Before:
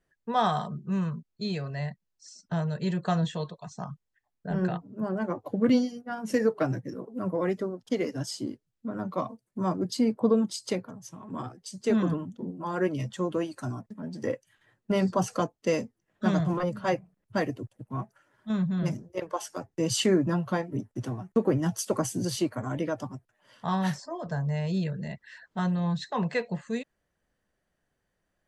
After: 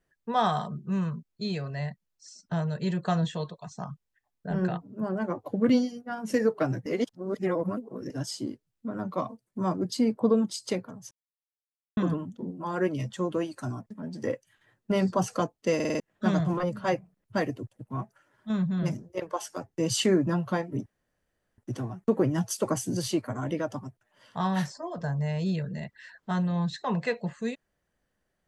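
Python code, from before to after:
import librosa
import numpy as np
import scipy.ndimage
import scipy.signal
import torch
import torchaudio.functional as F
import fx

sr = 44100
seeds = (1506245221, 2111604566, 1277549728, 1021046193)

y = fx.edit(x, sr, fx.reverse_span(start_s=6.86, length_s=1.24),
    fx.silence(start_s=11.11, length_s=0.86),
    fx.stutter_over(start_s=15.75, slice_s=0.05, count=5),
    fx.insert_room_tone(at_s=20.86, length_s=0.72), tone=tone)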